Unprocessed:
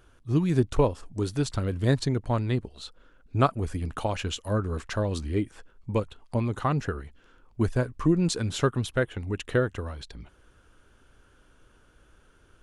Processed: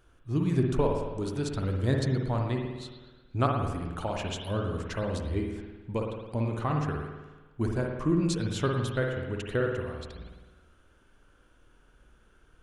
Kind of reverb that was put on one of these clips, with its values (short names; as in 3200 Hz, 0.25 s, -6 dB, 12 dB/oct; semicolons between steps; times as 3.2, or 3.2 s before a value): spring tank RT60 1.2 s, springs 53 ms, chirp 70 ms, DRR 1 dB; gain -5 dB